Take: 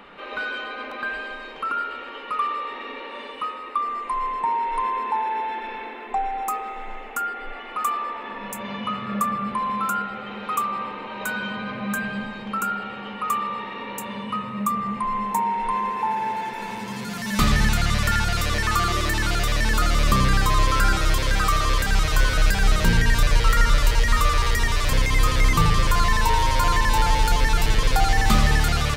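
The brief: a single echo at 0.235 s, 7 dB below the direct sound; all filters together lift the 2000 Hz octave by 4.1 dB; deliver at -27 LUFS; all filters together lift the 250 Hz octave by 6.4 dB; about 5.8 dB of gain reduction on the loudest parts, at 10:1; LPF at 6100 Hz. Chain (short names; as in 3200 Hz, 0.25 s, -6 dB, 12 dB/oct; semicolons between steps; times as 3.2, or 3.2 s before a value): LPF 6100 Hz; bell 250 Hz +8.5 dB; bell 2000 Hz +5 dB; compressor 10:1, threshold -17 dBFS; echo 0.235 s -7 dB; gain -3.5 dB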